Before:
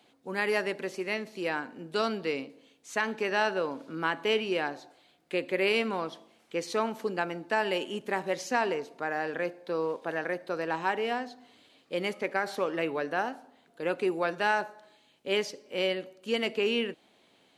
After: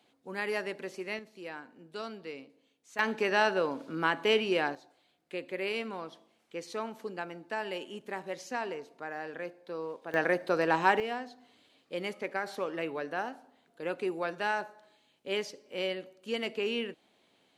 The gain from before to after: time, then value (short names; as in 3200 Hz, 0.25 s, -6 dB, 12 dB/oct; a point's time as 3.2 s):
-5 dB
from 1.19 s -11 dB
from 2.99 s +1 dB
from 4.75 s -7.5 dB
from 10.14 s +4.5 dB
from 11 s -4.5 dB